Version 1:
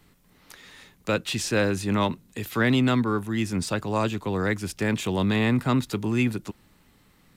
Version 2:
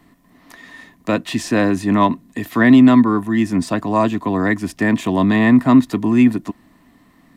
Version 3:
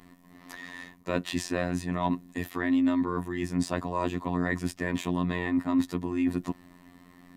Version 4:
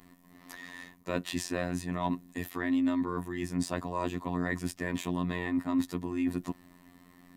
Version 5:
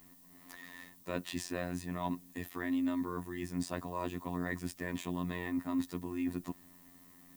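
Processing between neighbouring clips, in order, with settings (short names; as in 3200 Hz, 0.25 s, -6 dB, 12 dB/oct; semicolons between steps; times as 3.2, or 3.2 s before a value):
small resonant body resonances 270/680/1000/1800 Hz, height 15 dB, ringing for 30 ms
reverse; compressor 5:1, threshold -23 dBFS, peak gain reduction 15.5 dB; reverse; robotiser 88.6 Hz
high shelf 7700 Hz +6.5 dB; gain -3.5 dB
added noise violet -56 dBFS; gain -5 dB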